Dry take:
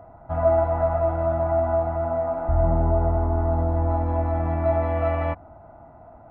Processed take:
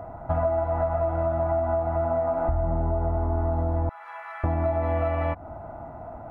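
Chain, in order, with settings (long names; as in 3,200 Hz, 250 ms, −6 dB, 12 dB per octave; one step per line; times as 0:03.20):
0:03.89–0:04.44: high-pass filter 1,400 Hz 24 dB per octave
downward compressor 10 to 1, threshold −29 dBFS, peak gain reduction 15 dB
level +7.5 dB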